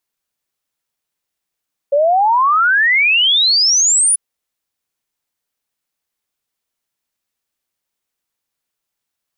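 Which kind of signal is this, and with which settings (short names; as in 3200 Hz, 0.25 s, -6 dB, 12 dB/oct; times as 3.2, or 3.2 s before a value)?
log sweep 550 Hz -> 10000 Hz 2.24 s -9.5 dBFS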